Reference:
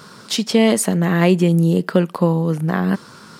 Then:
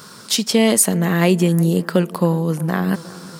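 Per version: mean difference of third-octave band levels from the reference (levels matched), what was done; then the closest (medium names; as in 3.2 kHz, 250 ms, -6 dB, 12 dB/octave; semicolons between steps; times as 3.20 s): 3.0 dB: treble shelf 6 kHz +11.5 dB; on a send: bucket-brigade echo 364 ms, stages 4096, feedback 66%, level -19.5 dB; on the sum: trim -1 dB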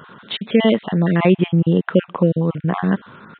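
7.0 dB: random holes in the spectrogram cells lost 25%; resampled via 8 kHz; trim +1 dB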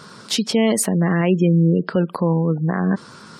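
5.0 dB: spectral gate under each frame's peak -30 dB strong; peak limiter -8 dBFS, peak gain reduction 6 dB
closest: first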